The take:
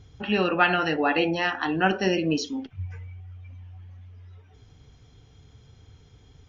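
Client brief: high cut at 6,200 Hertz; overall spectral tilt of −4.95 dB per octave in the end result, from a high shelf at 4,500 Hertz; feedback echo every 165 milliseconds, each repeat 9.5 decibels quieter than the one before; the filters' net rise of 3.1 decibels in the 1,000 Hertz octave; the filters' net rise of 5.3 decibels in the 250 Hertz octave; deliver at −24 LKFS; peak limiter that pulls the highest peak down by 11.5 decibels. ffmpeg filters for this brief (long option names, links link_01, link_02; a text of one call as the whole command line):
ffmpeg -i in.wav -af "lowpass=6200,equalizer=frequency=250:width_type=o:gain=7.5,equalizer=frequency=1000:width_type=o:gain=4.5,highshelf=frequency=4500:gain=-7.5,alimiter=limit=-16.5dB:level=0:latency=1,aecho=1:1:165|330|495|660:0.335|0.111|0.0365|0.012,volume=1.5dB" out.wav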